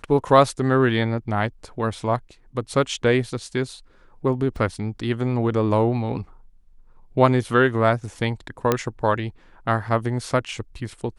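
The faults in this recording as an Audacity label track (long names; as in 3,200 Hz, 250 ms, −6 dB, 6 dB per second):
4.560000	4.560000	drop-out 2.2 ms
8.720000	8.720000	click −5 dBFS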